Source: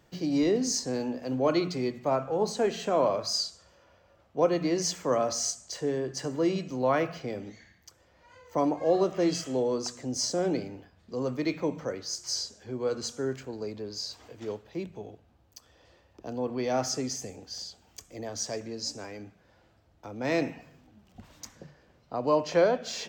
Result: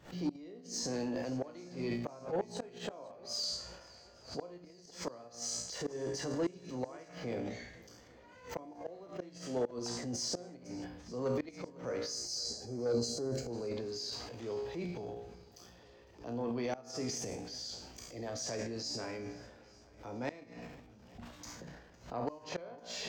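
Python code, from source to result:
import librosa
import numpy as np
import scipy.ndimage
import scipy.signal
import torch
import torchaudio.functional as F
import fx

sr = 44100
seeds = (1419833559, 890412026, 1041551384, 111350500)

p1 = fx.spec_box(x, sr, start_s=12.11, length_s=1.4, low_hz=840.0, high_hz=4000.0, gain_db=-15)
p2 = fx.comb_fb(p1, sr, f0_hz=59.0, decay_s=0.56, harmonics='all', damping=0.0, mix_pct=80)
p3 = fx.level_steps(p2, sr, step_db=18)
p4 = p2 + (p3 * librosa.db_to_amplitude(-1.0))
p5 = fx.gate_flip(p4, sr, shuts_db=-23.0, range_db=-34)
p6 = 10.0 ** (-27.5 / 20.0) * np.tanh(p5 / 10.0 ** (-27.5 / 20.0))
p7 = fx.transient(p6, sr, attack_db=-3, sustain_db=10)
p8 = fx.high_shelf(p7, sr, hz=7000.0, db=-6.5)
p9 = fx.echo_swing(p8, sr, ms=844, ratio=1.5, feedback_pct=41, wet_db=-22.0)
p10 = fx.pre_swell(p9, sr, db_per_s=150.0)
y = p10 * librosa.db_to_amplitude(3.0)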